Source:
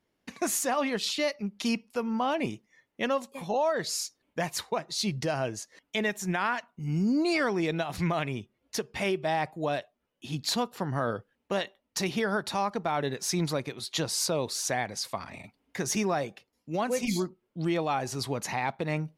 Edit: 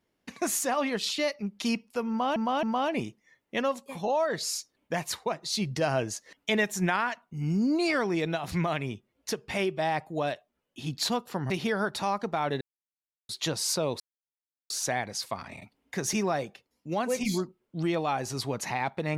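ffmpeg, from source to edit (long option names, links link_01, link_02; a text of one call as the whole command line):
ffmpeg -i in.wav -filter_complex "[0:a]asplit=9[link_01][link_02][link_03][link_04][link_05][link_06][link_07][link_08][link_09];[link_01]atrim=end=2.362[link_10];[link_02]atrim=start=2.088:end=2.362[link_11];[link_03]atrim=start=2.088:end=5.272[link_12];[link_04]atrim=start=5.268:end=6.422,asetpts=PTS-STARTPTS,volume=3dB[link_13];[link_05]atrim=start=6.418:end=10.962[link_14];[link_06]atrim=start=12.018:end=13.13,asetpts=PTS-STARTPTS,afade=type=out:start_time=1.108:duration=0.004:curve=hsin[link_15];[link_07]atrim=start=13.13:end=13.81,asetpts=PTS-STARTPTS,volume=0[link_16];[link_08]atrim=start=13.81:end=14.52,asetpts=PTS-STARTPTS,afade=type=in:duration=0.004:curve=hsin,afade=type=out:start_time=0.706:duration=0.004:curve=hsin,apad=pad_dur=0.7[link_17];[link_09]atrim=start=14.52,asetpts=PTS-STARTPTS,afade=type=in:duration=0.004:curve=hsin[link_18];[link_10][link_11]acrossfade=duration=0.004:curve1=hsin:curve2=hsin[link_19];[link_19][link_12]acrossfade=duration=0.004:curve1=hsin:curve2=hsin[link_20];[link_20][link_13]acrossfade=duration=0.004:curve1=hsin:curve2=hsin[link_21];[link_21][link_14]acrossfade=duration=0.004:curve1=hsin:curve2=hsin[link_22];[link_15][link_16][link_17][link_18]concat=n=4:v=0:a=1[link_23];[link_22][link_23]acrossfade=duration=0.004:curve1=hsin:curve2=hsin" out.wav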